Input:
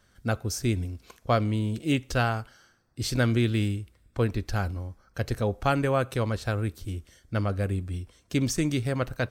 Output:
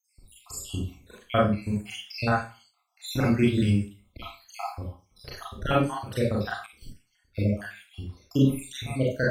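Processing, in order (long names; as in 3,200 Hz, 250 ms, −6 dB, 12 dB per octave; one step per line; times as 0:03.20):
time-frequency cells dropped at random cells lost 76%
four-comb reverb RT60 0.34 s, combs from 30 ms, DRR −5 dB
0:06.66–0:07.39: expander for the loud parts 1.5 to 1, over −53 dBFS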